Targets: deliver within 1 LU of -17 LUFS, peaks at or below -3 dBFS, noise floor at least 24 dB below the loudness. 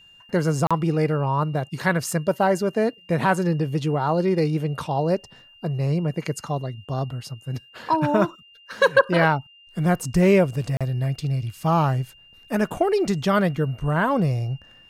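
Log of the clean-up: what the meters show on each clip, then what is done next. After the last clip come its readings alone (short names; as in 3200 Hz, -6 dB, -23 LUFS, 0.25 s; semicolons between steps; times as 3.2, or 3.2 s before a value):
dropouts 2; longest dropout 36 ms; steady tone 2800 Hz; tone level -49 dBFS; loudness -23.0 LUFS; peak -4.5 dBFS; loudness target -17.0 LUFS
-> interpolate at 0.67/10.77, 36 ms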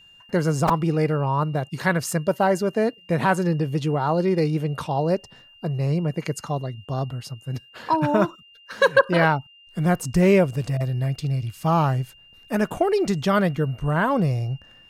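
dropouts 0; steady tone 2800 Hz; tone level -49 dBFS
-> notch 2800 Hz, Q 30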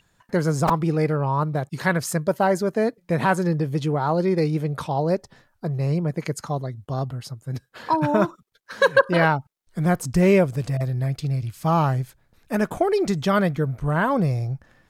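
steady tone none; loudness -23.0 LUFS; peak -4.0 dBFS; loudness target -17.0 LUFS
-> gain +6 dB; limiter -3 dBFS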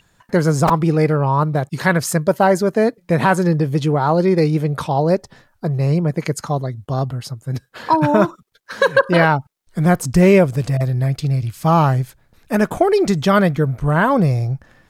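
loudness -17.5 LUFS; peak -3.0 dBFS; noise floor -60 dBFS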